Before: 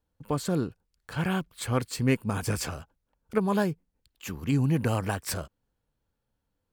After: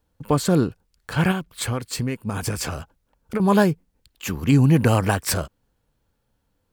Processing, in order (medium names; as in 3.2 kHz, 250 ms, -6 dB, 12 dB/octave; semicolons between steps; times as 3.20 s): 1.31–3.40 s: compression 16:1, threshold -31 dBFS, peak gain reduction 13.5 dB; trim +9 dB